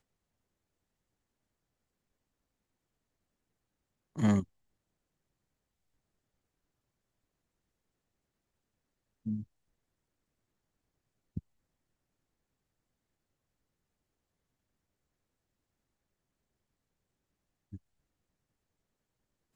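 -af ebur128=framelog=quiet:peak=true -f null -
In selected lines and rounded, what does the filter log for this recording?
Integrated loudness:
  I:         -32.7 LUFS
  Threshold: -45.8 LUFS
Loudness range:
  LRA:        24.2 LU
  Threshold: -62.7 LUFS
  LRA low:   -62.0 LUFS
  LRA high:  -37.9 LUFS
True peak:
  Peak:      -14.8 dBFS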